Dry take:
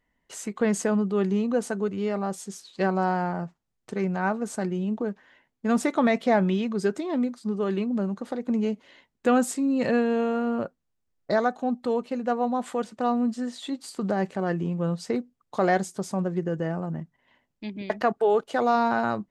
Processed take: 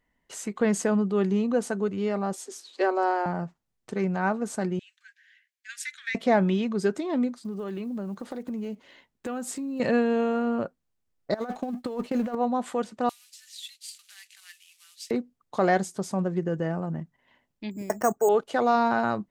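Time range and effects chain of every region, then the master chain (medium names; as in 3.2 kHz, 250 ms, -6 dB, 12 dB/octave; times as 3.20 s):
2.33–3.26 s: steep high-pass 260 Hz 96 dB/octave + bass shelf 370 Hz +4.5 dB + upward compressor, threshold -47 dBFS
4.79–6.15 s: Chebyshev high-pass 1.6 kHz, order 6 + loudspeaker Doppler distortion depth 0.35 ms
7.38–9.80 s: block-companded coder 7-bit + compression, threshold -30 dBFS
11.34–12.35 s: companding laws mixed up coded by mu + expander -36 dBFS + compressor with a negative ratio -28 dBFS, ratio -0.5
13.09–15.11 s: CVSD coder 64 kbps + inverse Chebyshev high-pass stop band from 420 Hz, stop band 80 dB
17.71–18.29 s: low-pass 1.6 kHz + careless resampling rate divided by 6×, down filtered, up hold
whole clip: none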